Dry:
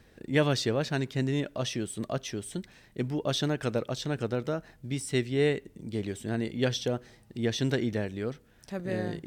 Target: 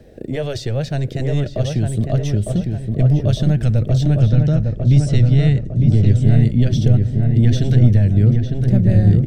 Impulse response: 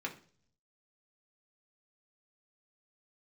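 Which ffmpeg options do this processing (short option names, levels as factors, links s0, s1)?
-filter_complex "[0:a]acrossover=split=180|1100[s0][s1][s2];[s0]aeval=exprs='0.0168*(abs(mod(val(0)/0.0168+3,4)-2)-1)':c=same[s3];[s1]acompressor=threshold=0.0112:ratio=10[s4];[s2]alimiter=level_in=1.12:limit=0.0631:level=0:latency=1:release=154,volume=0.891[s5];[s3][s4][s5]amix=inputs=3:normalize=0,asubboost=boost=9:cutoff=150,asettb=1/sr,asplit=3[s6][s7][s8];[s6]atrim=end=4.204[s9];[s7]atrim=start=4.2:end=6.23,asetpts=PTS-STARTPTS,afade=t=in:d=0.004:c=qsin,afade=t=out:st=2.026:d=0.004:c=qsin,lowpass=f=5900:t=q:w=1.5[s10];[s8]atrim=start=6.226[s11];[s9][s10]acrossfade=d=0.004:c1=hsin:c2=qsin[s12];[s12][s11]acrossfade=d=0.004:c1=qsin:c2=hsin,lowshelf=f=800:t=q:w=3:g=8.5,asplit=2[s13][s14];[s14]adelay=905,lowpass=f=1600:p=1,volume=0.668,asplit=2[s15][s16];[s16]adelay=905,lowpass=f=1600:p=1,volume=0.5,asplit=2[s17][s18];[s18]adelay=905,lowpass=f=1600:p=1,volume=0.5,asplit=2[s19][s20];[s20]adelay=905,lowpass=f=1600:p=1,volume=0.5,asplit=2[s21][s22];[s22]adelay=905,lowpass=f=1600:p=1,volume=0.5,asplit=2[s23][s24];[s24]adelay=905,lowpass=f=1600:p=1,volume=0.5,asplit=2[s25][s26];[s26]adelay=905,lowpass=f=1600:p=1,volume=0.5[s27];[s13][s15][s17][s19][s21][s23][s25][s27]amix=inputs=8:normalize=0,asplit=2[s28][s29];[1:a]atrim=start_sample=2205,lowpass=2400[s30];[s29][s30]afir=irnorm=-1:irlink=0,volume=0.133[s31];[s28][s31]amix=inputs=2:normalize=0,volume=1.58"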